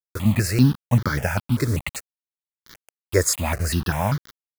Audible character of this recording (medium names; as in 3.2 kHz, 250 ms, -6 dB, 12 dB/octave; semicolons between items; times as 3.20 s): a quantiser's noise floor 6-bit, dither none; notches that jump at a steady rate 5.1 Hz 770–2600 Hz